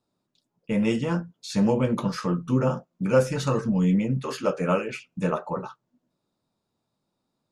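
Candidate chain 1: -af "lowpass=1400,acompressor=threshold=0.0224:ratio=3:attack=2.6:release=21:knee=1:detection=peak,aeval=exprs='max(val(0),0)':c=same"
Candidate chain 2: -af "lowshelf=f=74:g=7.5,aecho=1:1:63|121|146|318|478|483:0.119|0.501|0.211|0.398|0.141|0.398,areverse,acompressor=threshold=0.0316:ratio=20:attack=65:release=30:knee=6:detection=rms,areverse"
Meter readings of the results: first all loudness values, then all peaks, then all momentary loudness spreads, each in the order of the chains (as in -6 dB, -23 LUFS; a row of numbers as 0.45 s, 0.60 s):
-39.5 LUFS, -29.5 LUFS; -22.5 dBFS, -16.0 dBFS; 6 LU, 4 LU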